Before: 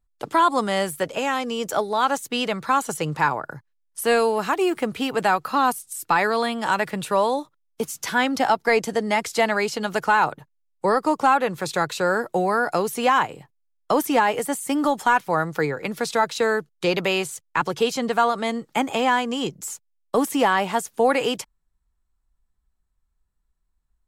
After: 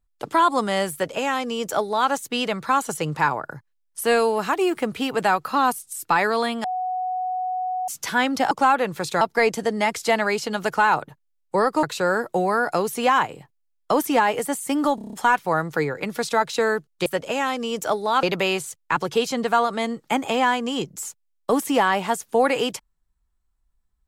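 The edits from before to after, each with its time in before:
0.93–2.1 copy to 16.88
6.64–7.88 bleep 739 Hz -23 dBFS
11.13–11.83 move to 8.51
14.95 stutter 0.03 s, 7 plays

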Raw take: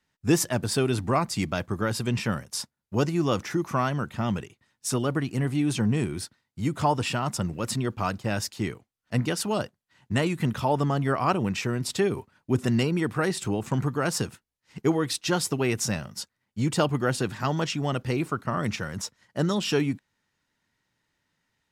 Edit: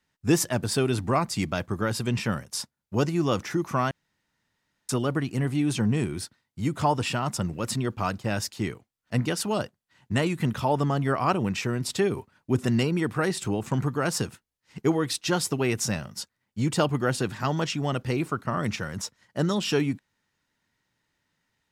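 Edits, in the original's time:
3.91–4.89 room tone

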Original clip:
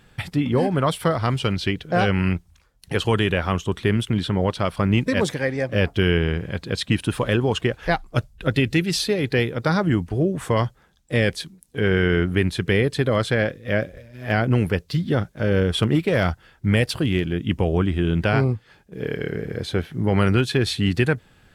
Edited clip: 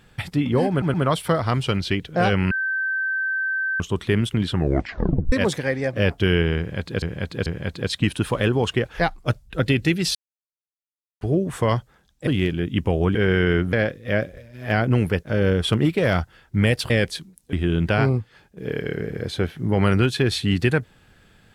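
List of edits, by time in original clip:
0.7 stutter 0.12 s, 3 plays
2.27–3.56 bleep 1550 Hz -21 dBFS
4.25 tape stop 0.83 s
6.34–6.78 loop, 3 plays
9.03–10.09 mute
11.15–11.78 swap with 17–17.88
12.36–13.33 cut
14.83–15.33 cut

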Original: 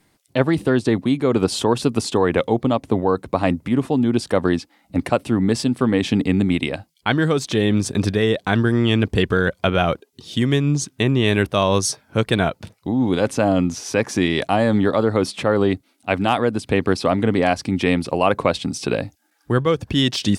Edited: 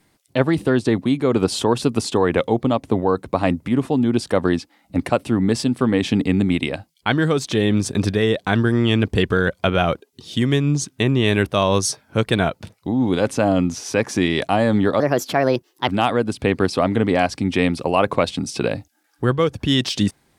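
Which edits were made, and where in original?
15–16.15 speed 131%

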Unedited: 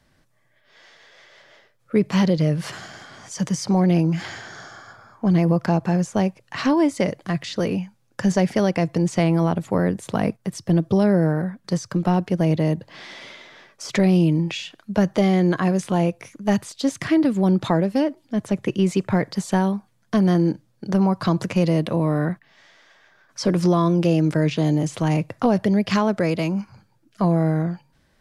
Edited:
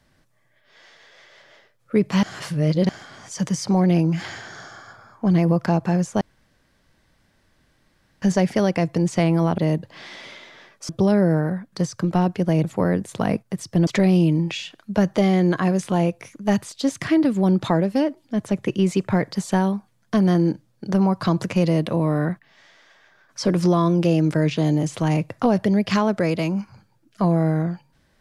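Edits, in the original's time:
2.23–2.89 reverse
6.21–8.22 room tone
9.58–10.81 swap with 12.56–13.87

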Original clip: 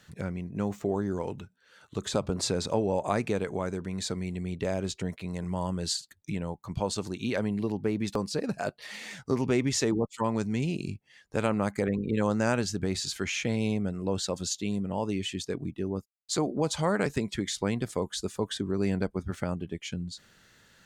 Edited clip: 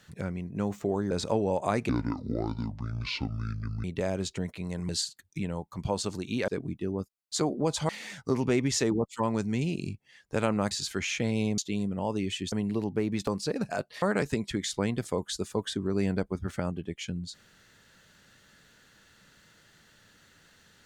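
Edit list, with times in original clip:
1.11–2.53 cut
3.31–4.48 speed 60%
5.53–5.81 cut
7.4–8.9 swap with 15.45–16.86
11.72–12.96 cut
13.83–14.51 cut

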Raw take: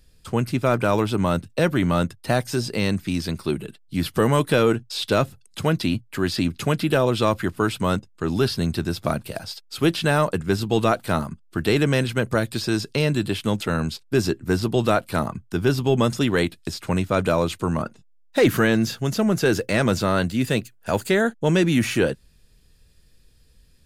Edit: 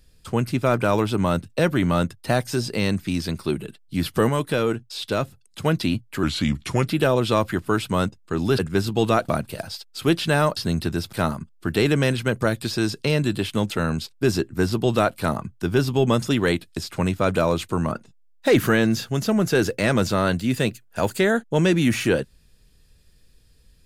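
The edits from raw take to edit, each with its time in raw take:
4.29–5.65 gain -4 dB
6.23–6.77 speed 85%
8.49–9.05 swap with 10.33–11.03

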